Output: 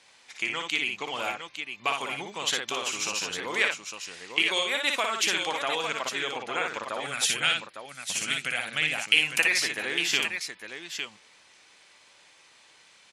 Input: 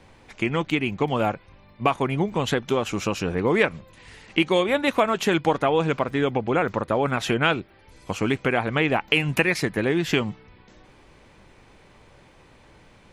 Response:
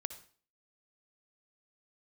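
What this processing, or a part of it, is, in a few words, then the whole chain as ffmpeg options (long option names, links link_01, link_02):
piezo pickup straight into a mixer: -filter_complex "[0:a]asettb=1/sr,asplit=3[link_01][link_02][link_03];[link_01]atrim=end=7.004[link_04];[link_02]atrim=start=7:end=9.14,asetpts=PTS-STARTPTS,afade=type=in:duration=0.004:curve=qsin,afade=type=out:start_time=2.136:duration=0.004:curve=qsin,equalizer=frequency=160:width_type=o:width=0.67:gain=8,equalizer=frequency=400:width_type=o:width=0.67:gain=-10,equalizer=frequency=1000:width_type=o:width=0.67:gain=-10,equalizer=frequency=10000:width_type=o:width=0.67:gain=11[link_05];[link_03]atrim=start=9.136[link_06];[link_04][link_05]acrossfade=duration=0.004:curve1=hsin:curve2=qsin[link_07];[link_07][link_06]acrossfade=duration=0.004:curve1=qsin:curve2=hsin,lowpass=7300,aderivative,aecho=1:1:58|856:0.631|0.422,volume=9dB"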